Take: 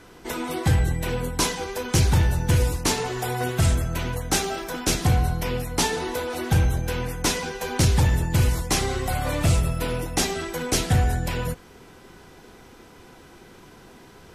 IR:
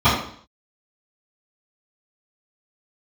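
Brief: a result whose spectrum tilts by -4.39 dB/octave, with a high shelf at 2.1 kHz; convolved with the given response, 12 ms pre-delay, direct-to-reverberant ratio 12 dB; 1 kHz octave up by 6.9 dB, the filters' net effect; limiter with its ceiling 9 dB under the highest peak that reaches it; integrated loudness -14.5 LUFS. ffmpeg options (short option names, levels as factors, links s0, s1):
-filter_complex "[0:a]equalizer=f=1000:t=o:g=7.5,highshelf=f=2100:g=6.5,alimiter=limit=0.2:level=0:latency=1,asplit=2[s0][s1];[1:a]atrim=start_sample=2205,adelay=12[s2];[s1][s2]afir=irnorm=-1:irlink=0,volume=0.0158[s3];[s0][s3]amix=inputs=2:normalize=0,volume=2.82"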